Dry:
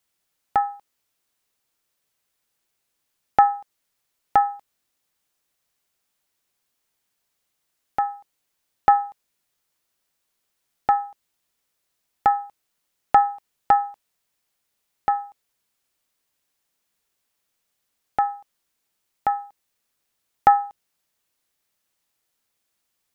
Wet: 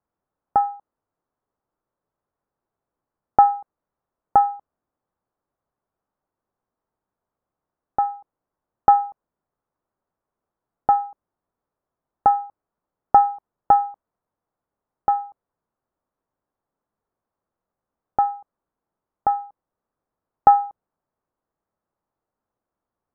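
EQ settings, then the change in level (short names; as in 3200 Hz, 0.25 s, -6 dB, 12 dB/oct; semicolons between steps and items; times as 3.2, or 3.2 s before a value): LPF 1200 Hz 24 dB/oct; +2.5 dB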